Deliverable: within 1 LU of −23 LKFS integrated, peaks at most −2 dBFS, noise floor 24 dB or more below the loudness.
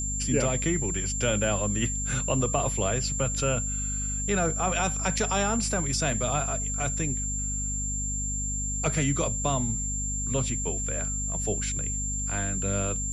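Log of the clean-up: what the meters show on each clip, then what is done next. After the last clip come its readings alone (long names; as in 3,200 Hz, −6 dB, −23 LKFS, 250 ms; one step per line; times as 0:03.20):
mains hum 50 Hz; hum harmonics up to 250 Hz; level of the hum −30 dBFS; interfering tone 7,300 Hz; level of the tone −30 dBFS; integrated loudness −27.0 LKFS; sample peak −11.5 dBFS; target loudness −23.0 LKFS
→ mains-hum notches 50/100/150/200/250 Hz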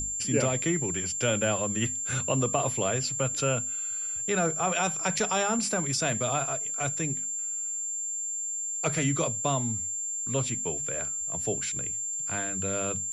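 mains hum none found; interfering tone 7,300 Hz; level of the tone −30 dBFS
→ notch filter 7,300 Hz, Q 30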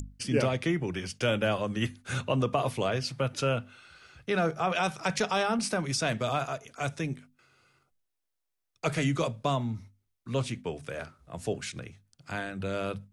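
interfering tone none found; integrated loudness −30.5 LKFS; sample peak −13.5 dBFS; target loudness −23.0 LKFS
→ level +7.5 dB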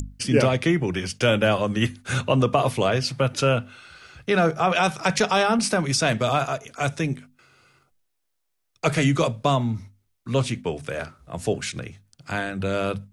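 integrated loudness −23.0 LKFS; sample peak −6.0 dBFS; background noise floor −75 dBFS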